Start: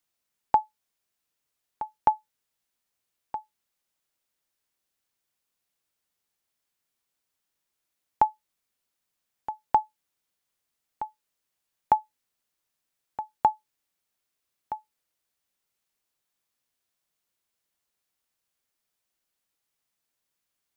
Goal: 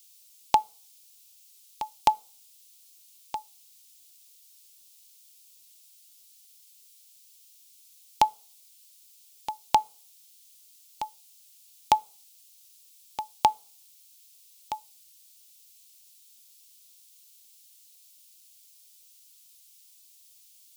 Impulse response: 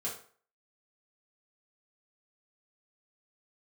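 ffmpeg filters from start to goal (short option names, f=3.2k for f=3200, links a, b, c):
-filter_complex "[0:a]asplit=2[a][b];[b]asuperstop=centerf=1800:order=4:qfactor=7.1[c];[1:a]atrim=start_sample=2205,asetrate=43659,aresample=44100[d];[c][d]afir=irnorm=-1:irlink=0,volume=-24.5dB[e];[a][e]amix=inputs=2:normalize=0,aexciter=amount=14:drive=4.7:freq=2.5k"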